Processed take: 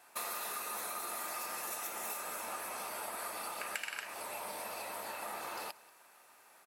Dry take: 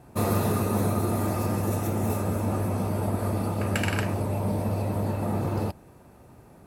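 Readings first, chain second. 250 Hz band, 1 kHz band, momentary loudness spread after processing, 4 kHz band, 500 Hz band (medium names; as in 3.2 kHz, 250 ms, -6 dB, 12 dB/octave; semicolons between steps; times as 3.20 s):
-29.5 dB, -8.0 dB, 4 LU, -3.5 dB, -17.0 dB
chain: high-pass 1.4 kHz 12 dB/octave; compression 6:1, threshold -40 dBFS, peak gain reduction 13 dB; on a send: delay 185 ms -22 dB; on the sum: trim +3 dB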